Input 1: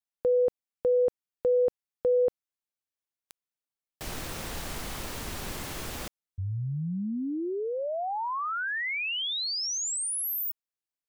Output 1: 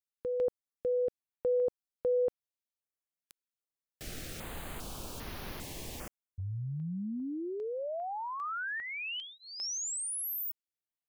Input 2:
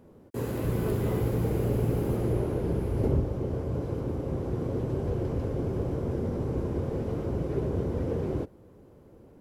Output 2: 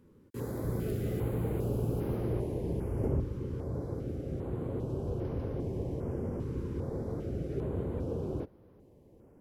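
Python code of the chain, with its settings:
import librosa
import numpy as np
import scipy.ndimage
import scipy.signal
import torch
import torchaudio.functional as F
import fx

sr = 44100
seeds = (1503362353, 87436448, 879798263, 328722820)

y = fx.filter_held_notch(x, sr, hz=2.5, low_hz=690.0, high_hz=7800.0)
y = y * librosa.db_to_amplitude(-5.0)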